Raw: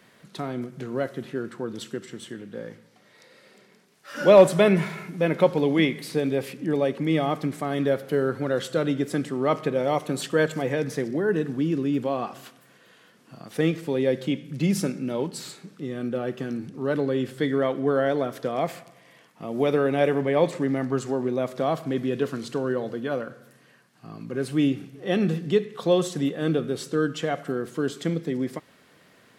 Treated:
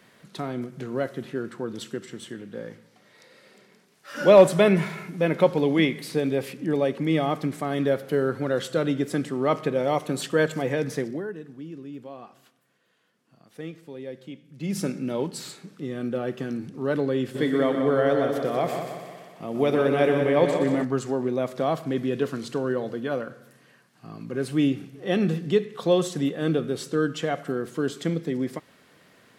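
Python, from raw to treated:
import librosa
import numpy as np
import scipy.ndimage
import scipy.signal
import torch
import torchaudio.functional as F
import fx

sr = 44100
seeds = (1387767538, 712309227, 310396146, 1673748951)

y = fx.echo_heads(x, sr, ms=61, heads='second and third', feedback_pct=55, wet_db=-8.0, at=(17.34, 20.83), fade=0.02)
y = fx.edit(y, sr, fx.fade_down_up(start_s=10.98, length_s=3.93, db=-14.0, fade_s=0.35), tone=tone)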